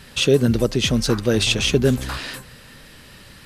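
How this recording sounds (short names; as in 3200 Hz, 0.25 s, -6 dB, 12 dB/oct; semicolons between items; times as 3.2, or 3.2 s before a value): noise floor -45 dBFS; spectral tilt -4.5 dB/oct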